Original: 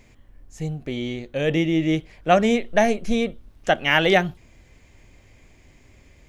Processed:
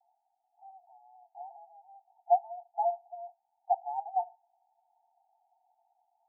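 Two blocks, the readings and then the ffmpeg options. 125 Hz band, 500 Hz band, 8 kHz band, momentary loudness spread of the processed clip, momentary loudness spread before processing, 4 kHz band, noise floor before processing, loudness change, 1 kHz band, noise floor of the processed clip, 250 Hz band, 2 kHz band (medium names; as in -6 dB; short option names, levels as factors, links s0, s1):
under -40 dB, -14.5 dB, under -40 dB, 19 LU, 13 LU, under -40 dB, -54 dBFS, -10.5 dB, -5.5 dB, -80 dBFS, under -40 dB, under -40 dB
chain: -af "alimiter=limit=0.266:level=0:latency=1:release=190,asuperpass=centerf=790:order=20:qfactor=3.4"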